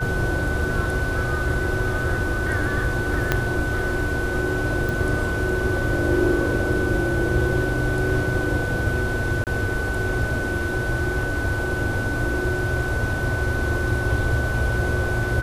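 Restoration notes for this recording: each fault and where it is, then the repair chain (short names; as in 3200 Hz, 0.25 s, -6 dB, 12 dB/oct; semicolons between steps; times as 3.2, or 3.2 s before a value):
tone 1500 Hz -27 dBFS
3.32 pop -5 dBFS
4.89 pop
9.44–9.47 gap 28 ms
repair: de-click; notch 1500 Hz, Q 30; interpolate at 9.44, 28 ms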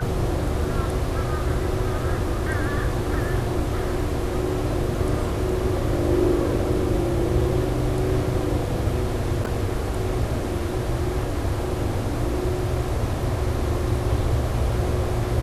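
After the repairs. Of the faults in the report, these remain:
3.32 pop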